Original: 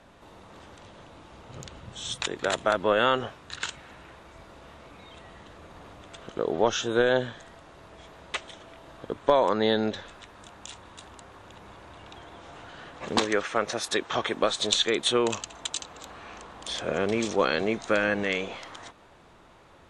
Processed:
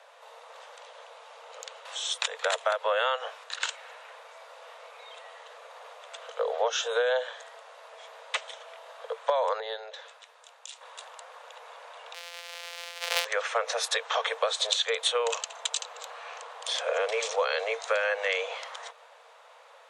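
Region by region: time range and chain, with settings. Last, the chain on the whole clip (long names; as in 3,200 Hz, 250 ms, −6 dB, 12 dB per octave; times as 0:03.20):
0:01.85–0:03.44: high-pass filter 420 Hz + one half of a high-frequency compander encoder only
0:09.60–0:10.81: downward compressor 2 to 1, threshold −41 dBFS + multiband upward and downward expander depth 70%
0:12.14–0:13.25: samples sorted by size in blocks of 256 samples + meter weighting curve D + hard clipping −4.5 dBFS
whole clip: Chebyshev high-pass filter 450 Hz, order 10; downward compressor 5 to 1, threshold −26 dBFS; level +3 dB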